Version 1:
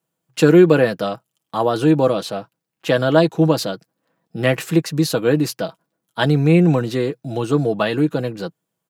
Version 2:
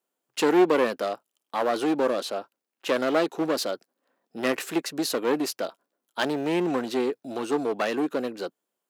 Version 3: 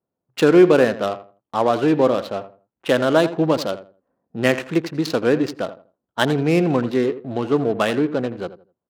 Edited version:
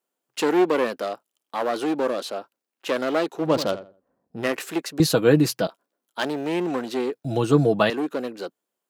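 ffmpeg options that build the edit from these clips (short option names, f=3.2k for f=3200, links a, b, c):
-filter_complex "[0:a]asplit=2[a][b];[1:a]asplit=4[c][d][e][f];[c]atrim=end=3.58[g];[2:a]atrim=start=3.34:end=4.52[h];[d]atrim=start=4.28:end=5.002[i];[a]atrim=start=4.998:end=5.672[j];[e]atrim=start=5.668:end=7.252[k];[b]atrim=start=7.248:end=7.902[l];[f]atrim=start=7.898[m];[g][h]acrossfade=d=0.24:c1=tri:c2=tri[n];[n][i]acrossfade=d=0.24:c1=tri:c2=tri[o];[o][j]acrossfade=d=0.004:c1=hsin:c2=hsin[p];[p][k]acrossfade=d=0.004:c1=hsin:c2=hsin[q];[q][l]acrossfade=d=0.004:c1=hsin:c2=hsin[r];[r][m]acrossfade=d=0.004:c1=hsin:c2=hsin"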